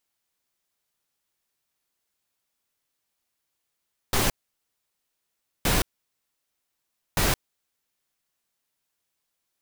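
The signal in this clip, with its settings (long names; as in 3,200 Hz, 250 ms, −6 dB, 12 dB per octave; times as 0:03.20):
noise bursts pink, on 0.17 s, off 1.35 s, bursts 3, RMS −22 dBFS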